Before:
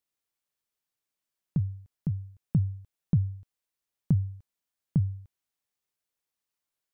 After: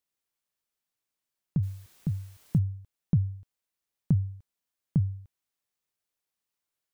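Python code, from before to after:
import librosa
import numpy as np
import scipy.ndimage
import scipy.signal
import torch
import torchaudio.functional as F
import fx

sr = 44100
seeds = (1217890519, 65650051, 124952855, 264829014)

y = fx.quant_dither(x, sr, seeds[0], bits=10, dither='triangular', at=(1.62, 2.57), fade=0.02)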